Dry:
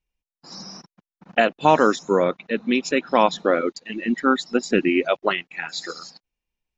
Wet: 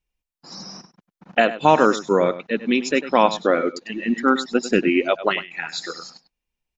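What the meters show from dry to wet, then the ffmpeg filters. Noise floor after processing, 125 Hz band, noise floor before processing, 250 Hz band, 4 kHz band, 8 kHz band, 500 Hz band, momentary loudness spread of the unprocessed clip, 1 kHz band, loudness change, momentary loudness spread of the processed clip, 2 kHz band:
below −85 dBFS, +1.0 dB, below −85 dBFS, +1.0 dB, +1.0 dB, can't be measured, +1.0 dB, 18 LU, +1.0 dB, +1.0 dB, 18 LU, +1.0 dB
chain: -filter_complex "[0:a]asplit=2[link_01][link_02];[link_02]adelay=99.13,volume=-14dB,highshelf=frequency=4000:gain=-2.23[link_03];[link_01][link_03]amix=inputs=2:normalize=0,volume=1dB"

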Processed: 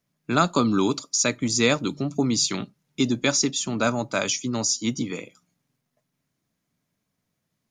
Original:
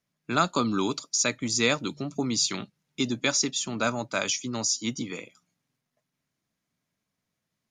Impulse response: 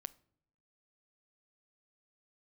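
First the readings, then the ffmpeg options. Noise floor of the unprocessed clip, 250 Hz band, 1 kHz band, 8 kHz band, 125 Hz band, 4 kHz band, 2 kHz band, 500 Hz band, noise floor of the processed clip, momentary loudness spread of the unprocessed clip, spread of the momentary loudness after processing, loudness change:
−83 dBFS, +5.5 dB, +2.5 dB, +2.5 dB, +6.0 dB, +2.0 dB, +1.5 dB, +4.5 dB, −79 dBFS, 9 LU, 7 LU, +3.5 dB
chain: -filter_complex "[0:a]asplit=2[link_01][link_02];[link_02]equalizer=frequency=2800:width=0.46:gain=-14.5[link_03];[1:a]atrim=start_sample=2205,atrim=end_sample=4410[link_04];[link_03][link_04]afir=irnorm=-1:irlink=0,volume=4.5dB[link_05];[link_01][link_05]amix=inputs=2:normalize=0"

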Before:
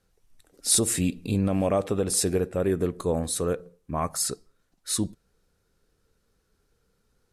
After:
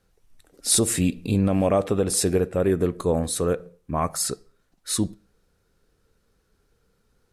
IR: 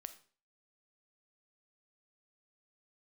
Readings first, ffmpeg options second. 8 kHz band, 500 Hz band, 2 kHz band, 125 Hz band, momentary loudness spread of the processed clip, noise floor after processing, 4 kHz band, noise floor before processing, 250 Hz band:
+1.0 dB, +3.5 dB, +3.0 dB, +3.5 dB, 10 LU, −69 dBFS, +2.0 dB, −72 dBFS, +3.5 dB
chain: -filter_complex "[0:a]asplit=2[link_01][link_02];[1:a]atrim=start_sample=2205,lowpass=4700[link_03];[link_02][link_03]afir=irnorm=-1:irlink=0,volume=-6.5dB[link_04];[link_01][link_04]amix=inputs=2:normalize=0,volume=1.5dB"

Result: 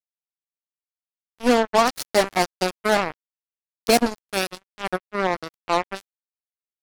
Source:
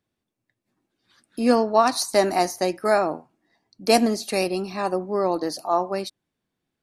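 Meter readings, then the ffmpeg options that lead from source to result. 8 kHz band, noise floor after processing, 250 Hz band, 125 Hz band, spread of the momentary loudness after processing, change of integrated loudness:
0.0 dB, below −85 dBFS, −2.0 dB, 0.0 dB, 11 LU, 0.0 dB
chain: -af "acrusher=bits=2:mix=0:aa=0.5"

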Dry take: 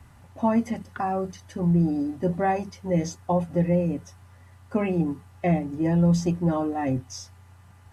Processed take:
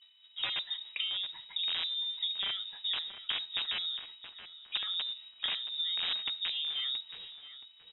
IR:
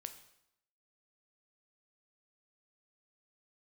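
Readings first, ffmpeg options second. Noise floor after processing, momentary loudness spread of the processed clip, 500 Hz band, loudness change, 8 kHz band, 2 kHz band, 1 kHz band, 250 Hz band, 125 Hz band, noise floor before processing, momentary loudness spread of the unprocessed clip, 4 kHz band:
−59 dBFS, 15 LU, −32.5 dB, −7.5 dB, can't be measured, −2.0 dB, −21.5 dB, below −40 dB, below −40 dB, −52 dBFS, 9 LU, +19.0 dB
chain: -filter_complex "[0:a]agate=range=-33dB:threshold=-40dB:ratio=3:detection=peak,aeval=exprs='(mod(5.62*val(0)+1,2)-1)/5.62':channel_layout=same,acompressor=threshold=-35dB:ratio=10,lowpass=frequency=3300:width_type=q:width=0.5098,lowpass=frequency=3300:width_type=q:width=0.6013,lowpass=frequency=3300:width_type=q:width=0.9,lowpass=frequency=3300:width_type=q:width=2.563,afreqshift=-3900,asplit=2[link_01][link_02];[link_02]adelay=674,lowpass=frequency=2000:poles=1,volume=-9.5dB,asplit=2[link_03][link_04];[link_04]adelay=674,lowpass=frequency=2000:poles=1,volume=0.33,asplit=2[link_05][link_06];[link_06]adelay=674,lowpass=frequency=2000:poles=1,volume=0.33,asplit=2[link_07][link_08];[link_08]adelay=674,lowpass=frequency=2000:poles=1,volume=0.33[link_09];[link_01][link_03][link_05][link_07][link_09]amix=inputs=5:normalize=0,asplit=2[link_10][link_11];[1:a]atrim=start_sample=2205,afade=type=out:start_time=0.17:duration=0.01,atrim=end_sample=7938,lowshelf=frequency=380:gain=8.5[link_12];[link_11][link_12]afir=irnorm=-1:irlink=0,volume=-5dB[link_13];[link_10][link_13]amix=inputs=2:normalize=0,aeval=exprs='val(0)+0.000631*sin(2*PI*3000*n/s)':channel_layout=same"

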